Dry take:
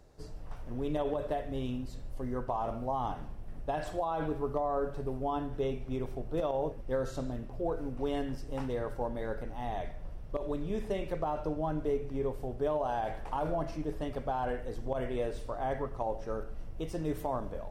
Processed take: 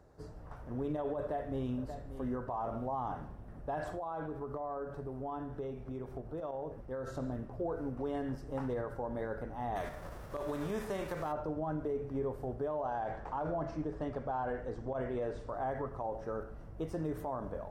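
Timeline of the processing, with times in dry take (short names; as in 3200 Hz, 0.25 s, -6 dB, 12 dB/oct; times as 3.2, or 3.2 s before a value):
1.19–1.79 echo throw 0.58 s, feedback 35%, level -12.5 dB
3.92–7.07 compressor, threshold -36 dBFS
9.75–11.31 spectral whitening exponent 0.6
12.78–15.49 LPF 7800 Hz 24 dB/oct
whole clip: HPF 49 Hz 12 dB/oct; resonant high shelf 2000 Hz -7 dB, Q 1.5; limiter -28 dBFS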